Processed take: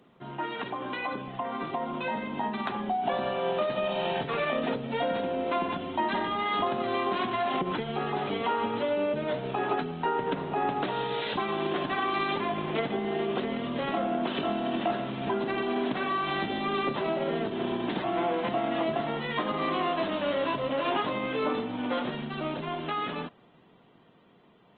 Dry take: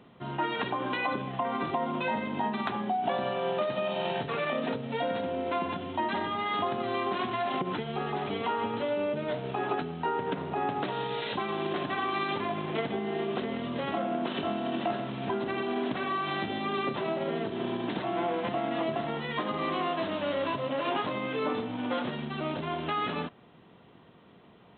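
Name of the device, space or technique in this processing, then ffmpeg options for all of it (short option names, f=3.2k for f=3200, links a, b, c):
video call: -af "highpass=120,dynaudnorm=f=490:g=11:m=5dB,volume=-3dB" -ar 48000 -c:a libopus -b:a 20k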